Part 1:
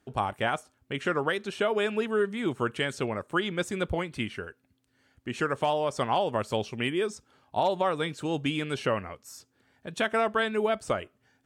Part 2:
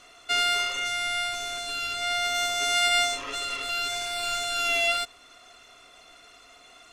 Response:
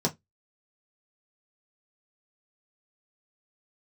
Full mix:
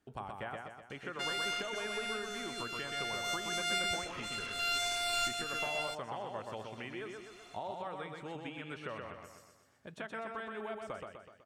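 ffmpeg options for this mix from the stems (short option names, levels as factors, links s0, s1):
-filter_complex "[0:a]acrossover=split=680|2300[s0][s1][s2];[s0]acompressor=threshold=0.0112:ratio=4[s3];[s1]acompressor=threshold=0.0178:ratio=4[s4];[s2]acompressor=threshold=0.00178:ratio=4[s5];[s3][s4][s5]amix=inputs=3:normalize=0,volume=0.398,asplit=3[s6][s7][s8];[s7]volume=0.631[s9];[1:a]adelay=900,volume=0.668[s10];[s8]apad=whole_len=344951[s11];[s10][s11]sidechaincompress=threshold=0.00355:ratio=8:attack=48:release=503[s12];[s9]aecho=0:1:125|250|375|500|625|750|875:1|0.51|0.26|0.133|0.0677|0.0345|0.0176[s13];[s6][s12][s13]amix=inputs=3:normalize=0"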